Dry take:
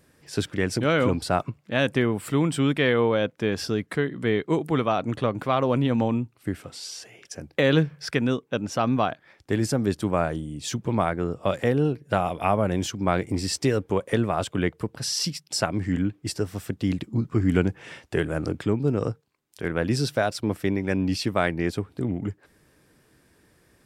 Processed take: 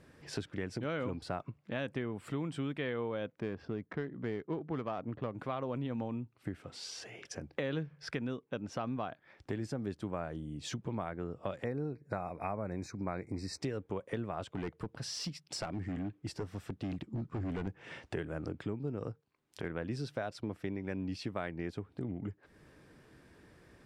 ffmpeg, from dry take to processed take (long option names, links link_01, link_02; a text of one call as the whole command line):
ffmpeg -i in.wav -filter_complex "[0:a]asettb=1/sr,asplit=3[link_01][link_02][link_03];[link_01]atrim=end=3.404[link_04];[link_02]atrim=start=3.4:end=5.33,asetpts=PTS-STARTPTS,afade=type=in:duration=0.004:curve=qsin,afade=type=out:start_time=1.926:duration=0.004:curve=qsin,adynamicsmooth=sensitivity=1.5:basefreq=1400[link_05];[link_03]atrim=start=5.326[link_06];[link_04][link_05]acrossfade=duration=0.004:curve1=hsin:curve2=qsin[link_07];[link_07][link_06]acrossfade=duration=0.004:curve1=qsin:curve2=hsin,asettb=1/sr,asplit=3[link_08][link_09][link_10];[link_08]atrim=end=11.654[link_11];[link_09]atrim=start=11.65:end=13.61,asetpts=PTS-STARTPTS,afade=type=in:duration=0.004:curve=qsin,afade=type=out:start_time=1.956:duration=0.004:curve=qsin,asuperstop=centerf=3100:order=20:qfactor=2.7[link_12];[link_10]atrim=start=13.606[link_13];[link_11][link_12]acrossfade=duration=0.004:curve1=hsin:curve2=qsin[link_14];[link_14][link_13]acrossfade=duration=0.004:curve1=qsin:curve2=hsin,asettb=1/sr,asplit=3[link_15][link_16][link_17];[link_15]atrim=end=14.554[link_18];[link_16]atrim=start=14.55:end=17.67,asetpts=PTS-STARTPTS,afade=type=in:duration=0.004:curve=qsin,afade=type=out:start_time=3.116:duration=0.004:curve=qsin,asoftclip=type=hard:threshold=-22dB[link_19];[link_17]atrim=start=17.666[link_20];[link_18][link_19]acrossfade=duration=0.004:curve1=hsin:curve2=qsin[link_21];[link_21][link_20]acrossfade=duration=0.004:curve1=qsin:curve2=hsin,aemphasis=mode=reproduction:type=50fm,acompressor=threshold=-43dB:ratio=2.5,volume=1dB" out.wav